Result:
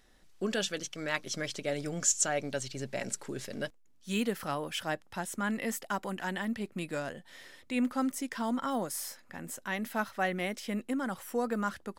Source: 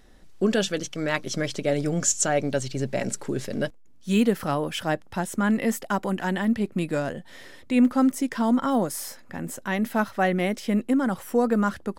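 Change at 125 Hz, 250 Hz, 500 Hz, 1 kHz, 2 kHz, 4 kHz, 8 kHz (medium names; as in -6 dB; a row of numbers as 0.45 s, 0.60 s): -11.5 dB, -11.5 dB, -9.5 dB, -7.5 dB, -5.5 dB, -4.5 dB, -4.0 dB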